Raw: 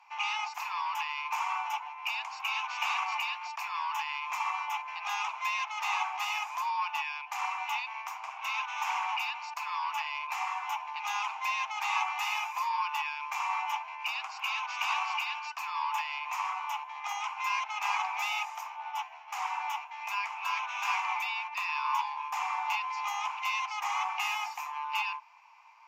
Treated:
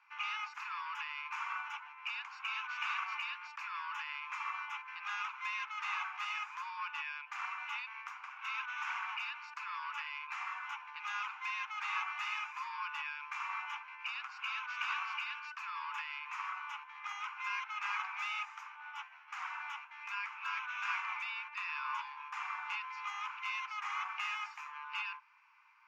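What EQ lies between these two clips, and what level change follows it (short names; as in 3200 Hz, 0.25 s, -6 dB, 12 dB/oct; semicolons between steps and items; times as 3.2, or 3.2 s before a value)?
ladder high-pass 1300 Hz, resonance 65%; air absorption 50 m; high shelf 7300 Hz -7.5 dB; +3.5 dB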